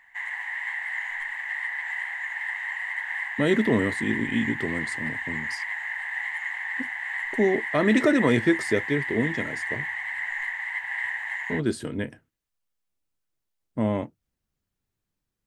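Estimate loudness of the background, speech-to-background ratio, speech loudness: -29.5 LUFS, 3.5 dB, -26.0 LUFS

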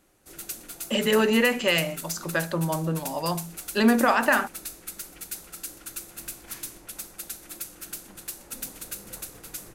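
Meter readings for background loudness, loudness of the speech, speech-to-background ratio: -37.0 LUFS, -24.0 LUFS, 13.0 dB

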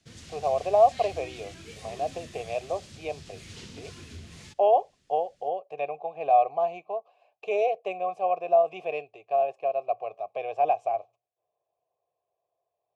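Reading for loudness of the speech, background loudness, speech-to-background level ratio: -27.5 LUFS, -45.0 LUFS, 17.5 dB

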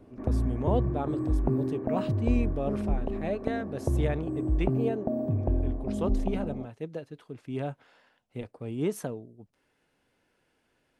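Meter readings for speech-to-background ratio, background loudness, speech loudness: -4.5 dB, -30.5 LUFS, -35.0 LUFS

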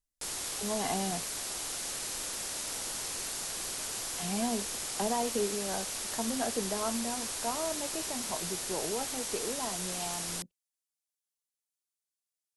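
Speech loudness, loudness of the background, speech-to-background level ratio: -37.0 LUFS, -34.5 LUFS, -2.5 dB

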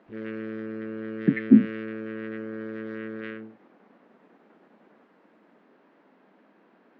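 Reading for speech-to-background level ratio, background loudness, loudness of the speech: 13.5 dB, -35.5 LUFS, -22.0 LUFS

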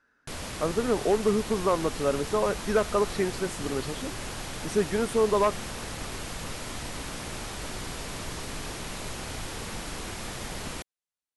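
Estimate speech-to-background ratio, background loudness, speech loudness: 8.5 dB, -36.0 LUFS, -27.5 LUFS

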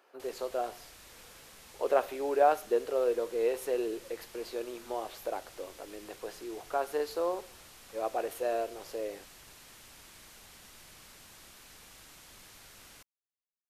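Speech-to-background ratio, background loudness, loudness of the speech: 19.0 dB, -52.0 LUFS, -33.0 LUFS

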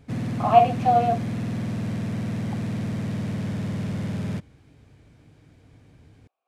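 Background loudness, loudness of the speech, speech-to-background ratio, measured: -29.0 LUFS, -21.0 LUFS, 8.0 dB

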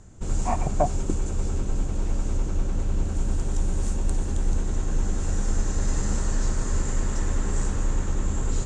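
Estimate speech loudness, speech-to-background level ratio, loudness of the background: -30.0 LUFS, -1.0 dB, -29.0 LUFS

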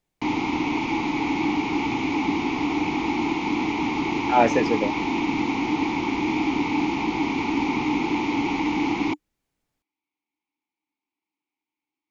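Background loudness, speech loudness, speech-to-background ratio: -24.5 LUFS, -23.5 LUFS, 1.0 dB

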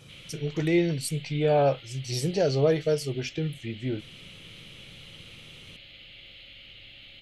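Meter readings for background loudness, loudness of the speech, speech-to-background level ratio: -46.0 LUFS, -27.0 LUFS, 19.0 dB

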